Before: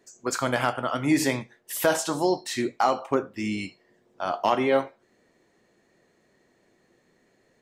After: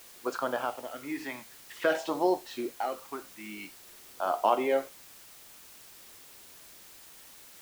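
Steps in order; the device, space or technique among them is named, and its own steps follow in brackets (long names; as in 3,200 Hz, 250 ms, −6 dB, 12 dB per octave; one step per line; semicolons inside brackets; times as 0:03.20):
shortwave radio (band-pass filter 350–2,700 Hz; amplitude tremolo 0.47 Hz, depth 67%; auto-filter notch sine 0.52 Hz 440–2,200 Hz; white noise bed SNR 18 dB)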